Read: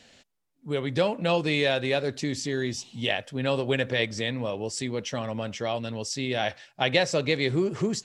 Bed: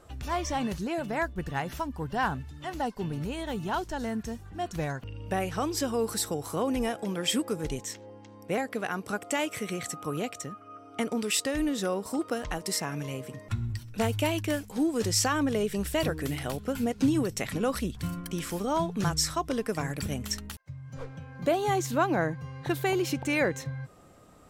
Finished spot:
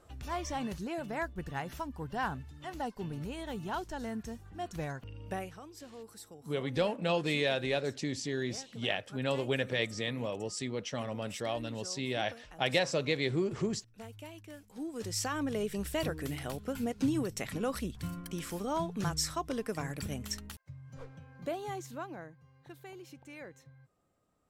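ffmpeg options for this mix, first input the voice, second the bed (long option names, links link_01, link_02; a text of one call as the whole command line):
ffmpeg -i stem1.wav -i stem2.wav -filter_complex "[0:a]adelay=5800,volume=-6dB[link_01];[1:a]volume=8.5dB,afade=type=out:start_time=5.27:duration=0.33:silence=0.199526,afade=type=in:start_time=14.52:duration=1.14:silence=0.188365,afade=type=out:start_time=20.56:duration=1.76:silence=0.158489[link_02];[link_01][link_02]amix=inputs=2:normalize=0" out.wav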